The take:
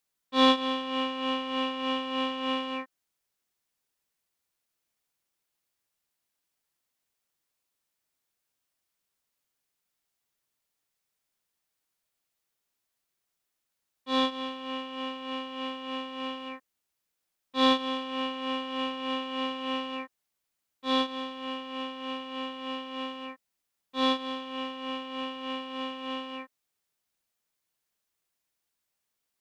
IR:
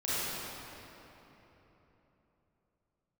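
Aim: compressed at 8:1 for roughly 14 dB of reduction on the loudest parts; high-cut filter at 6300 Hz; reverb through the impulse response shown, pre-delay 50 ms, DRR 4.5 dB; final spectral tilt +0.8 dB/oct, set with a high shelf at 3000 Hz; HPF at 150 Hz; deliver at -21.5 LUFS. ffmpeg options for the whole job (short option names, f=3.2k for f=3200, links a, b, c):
-filter_complex "[0:a]highpass=150,lowpass=6.3k,highshelf=f=3k:g=-5.5,acompressor=threshold=-31dB:ratio=8,asplit=2[a][b];[1:a]atrim=start_sample=2205,adelay=50[c];[b][c]afir=irnorm=-1:irlink=0,volume=-13.5dB[d];[a][d]amix=inputs=2:normalize=0,volume=15.5dB"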